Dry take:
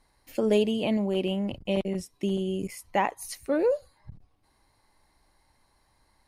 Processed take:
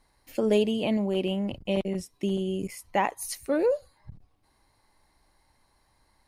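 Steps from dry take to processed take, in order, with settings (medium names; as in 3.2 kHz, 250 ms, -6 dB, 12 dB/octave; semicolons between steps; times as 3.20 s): 3.03–3.66 s: treble shelf 4.9 kHz +5 dB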